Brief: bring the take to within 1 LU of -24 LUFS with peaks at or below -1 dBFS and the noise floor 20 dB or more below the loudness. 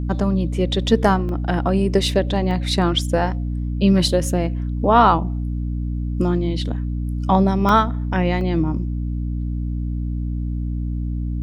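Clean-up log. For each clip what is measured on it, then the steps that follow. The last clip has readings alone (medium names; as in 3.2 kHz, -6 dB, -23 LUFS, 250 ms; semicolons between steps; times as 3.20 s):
dropouts 4; longest dropout 1.1 ms; hum 60 Hz; highest harmonic 300 Hz; hum level -21 dBFS; loudness -20.5 LUFS; peak level -2.0 dBFS; loudness target -24.0 LUFS
-> interpolate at 1.29/2.51/7.69/8.41 s, 1.1 ms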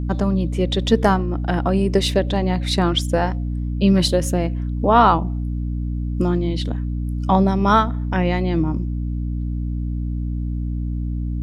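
dropouts 0; hum 60 Hz; highest harmonic 300 Hz; hum level -21 dBFS
-> de-hum 60 Hz, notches 5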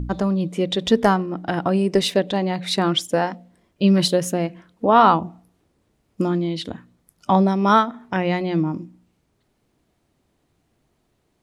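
hum not found; loudness -20.5 LUFS; peak level -2.0 dBFS; loudness target -24.0 LUFS
-> trim -3.5 dB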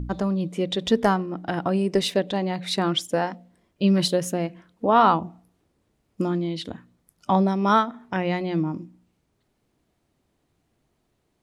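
loudness -24.0 LUFS; peak level -5.5 dBFS; noise floor -72 dBFS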